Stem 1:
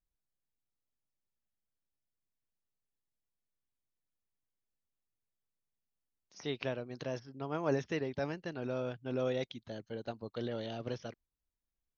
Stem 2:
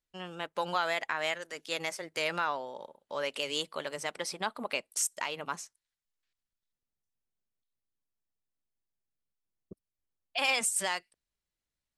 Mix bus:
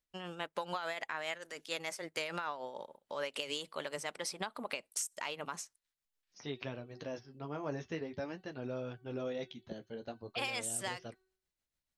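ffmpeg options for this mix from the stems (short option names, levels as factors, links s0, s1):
-filter_complex "[0:a]agate=range=0.0224:threshold=0.00112:ratio=3:detection=peak,bandreject=f=376.7:t=h:w=4,bandreject=f=753.4:t=h:w=4,bandreject=f=1130.1:t=h:w=4,bandreject=f=1506.8:t=h:w=4,bandreject=f=1883.5:t=h:w=4,bandreject=f=2260.2:t=h:w=4,bandreject=f=2636.9:t=h:w=4,bandreject=f=3013.6:t=h:w=4,bandreject=f=3390.3:t=h:w=4,bandreject=f=3767:t=h:w=4,bandreject=f=4143.7:t=h:w=4,bandreject=f=4520.4:t=h:w=4,flanger=delay=7.5:depth=7:regen=-34:speed=0.46:shape=triangular,volume=1.06[s0];[1:a]tremolo=f=6.8:d=0.51,volume=1.12[s1];[s0][s1]amix=inputs=2:normalize=0,acompressor=threshold=0.02:ratio=6"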